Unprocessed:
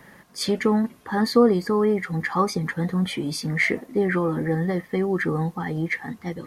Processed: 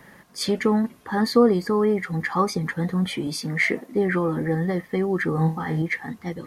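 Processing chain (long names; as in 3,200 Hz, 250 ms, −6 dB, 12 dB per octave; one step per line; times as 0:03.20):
0:03.27–0:03.92: high-pass filter 140 Hz
0:05.35–0:05.82: flutter between parallel walls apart 4.3 metres, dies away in 0.29 s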